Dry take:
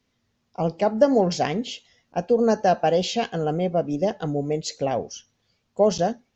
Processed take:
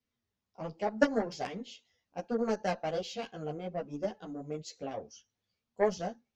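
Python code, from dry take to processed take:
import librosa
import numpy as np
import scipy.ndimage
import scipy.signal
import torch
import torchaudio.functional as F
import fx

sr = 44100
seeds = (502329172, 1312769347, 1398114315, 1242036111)

y = fx.cheby_harmonics(x, sr, harmonics=(3,), levels_db=(-12,), full_scale_db=-4.5)
y = fx.ensemble(y, sr)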